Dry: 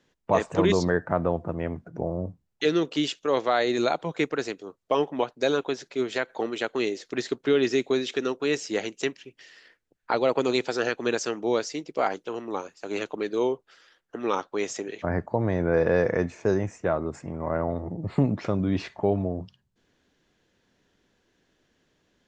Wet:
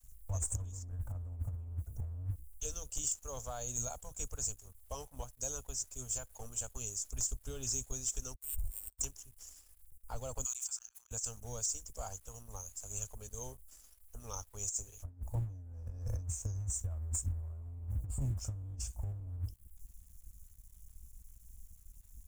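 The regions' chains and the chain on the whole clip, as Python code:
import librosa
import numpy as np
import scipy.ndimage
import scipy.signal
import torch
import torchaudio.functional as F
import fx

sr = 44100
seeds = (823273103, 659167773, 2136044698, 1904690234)

y = fx.chain(x, sr, fx.lowpass(hz=4100.0, slope=12),
    fx.differentiator(),
    fx.resample_linear(factor=8), at=(8.34, 9.01))
y = fx.chain(y, sr, fx.steep_highpass(hz=1000.0, slope=36),
    fx.auto_swell(attack_ms=583.0),
    fx.sustainer(db_per_s=35.0), at=(10.44, 11.11))
y = scipy.signal.sosfilt(scipy.signal.cheby2(4, 50, [150.0, 4300.0], 'bandstop', fs=sr, output='sos'), y)
y = fx.over_compress(y, sr, threshold_db=-59.0, ratio=-0.5)
y = fx.leveller(y, sr, passes=2)
y = y * 10.0 ** (17.0 / 20.0)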